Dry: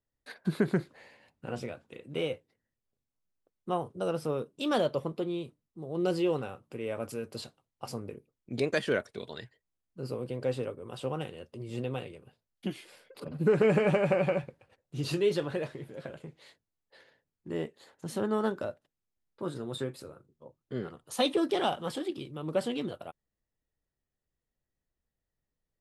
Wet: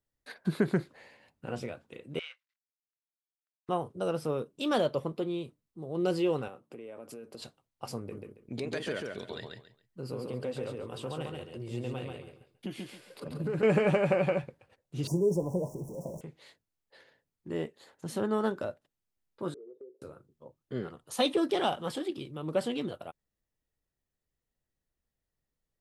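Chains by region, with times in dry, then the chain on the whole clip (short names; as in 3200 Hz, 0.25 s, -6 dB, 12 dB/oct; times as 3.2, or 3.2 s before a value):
2.19–3.69 G.711 law mismatch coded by A + HPF 1400 Hz 24 dB/oct + air absorption 130 m
6.48–7.42 HPF 230 Hz + tilt shelf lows +4 dB, about 660 Hz + compressor 12:1, threshold -40 dBFS
7.98–13.63 compressor 3:1, threshold -33 dBFS + feedback echo 0.138 s, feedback 23%, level -3.5 dB
15.07–16.21 zero-crossing step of -42.5 dBFS + Chebyshev band-stop 990–5600 Hz, order 5 + bell 180 Hz +9 dB 0.28 oct
19.54–20.02 Butterworth band-pass 420 Hz, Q 3.6 + compressor 4:1, threshold -46 dBFS
whole clip: dry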